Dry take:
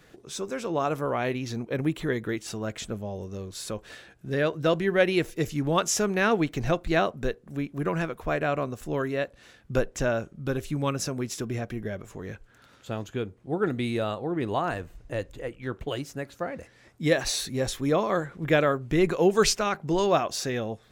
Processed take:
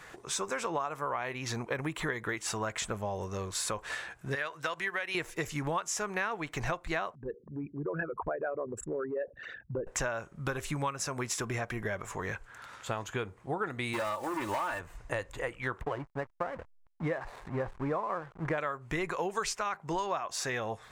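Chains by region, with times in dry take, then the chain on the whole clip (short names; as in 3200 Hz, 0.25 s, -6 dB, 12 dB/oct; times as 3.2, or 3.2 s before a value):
4.35–5.15 gate -24 dBFS, range -8 dB + tilt shelf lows -7 dB, about 670 Hz + compressor, threshold -29 dBFS
7.15–9.87 formant sharpening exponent 3 + HPF 110 Hz 6 dB/oct + compressor 2:1, threshold -33 dBFS
13.93–14.81 block floating point 5-bit + comb 3.4 ms, depth 73% + hard clip -24 dBFS
15.81–18.58 LPF 1300 Hz + backlash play -40 dBFS
whole clip: graphic EQ 250/1000/2000/8000 Hz -5/+12/+7/+8 dB; compressor 10:1, threshold -30 dBFS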